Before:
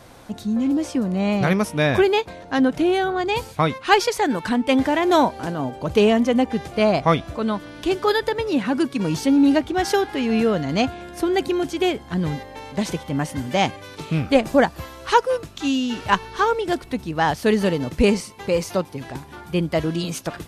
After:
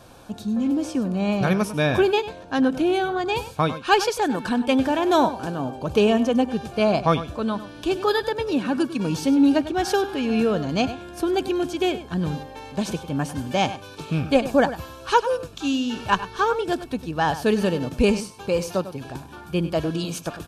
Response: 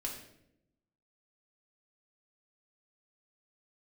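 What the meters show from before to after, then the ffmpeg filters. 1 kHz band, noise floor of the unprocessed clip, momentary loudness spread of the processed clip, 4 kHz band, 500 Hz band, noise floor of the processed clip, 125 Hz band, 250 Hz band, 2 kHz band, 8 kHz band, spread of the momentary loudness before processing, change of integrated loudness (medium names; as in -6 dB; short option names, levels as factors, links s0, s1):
-2.0 dB, -42 dBFS, 9 LU, -2.0 dB, -2.0 dB, -42 dBFS, -1.5 dB, -1.5 dB, -2.5 dB, -2.0 dB, 9 LU, -2.0 dB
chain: -filter_complex "[0:a]asuperstop=centerf=2000:order=4:qfactor=6,asplit=2[s0][s1];[s1]adelay=99.13,volume=0.224,highshelf=f=4000:g=-2.23[s2];[s0][s2]amix=inputs=2:normalize=0,volume=0.794"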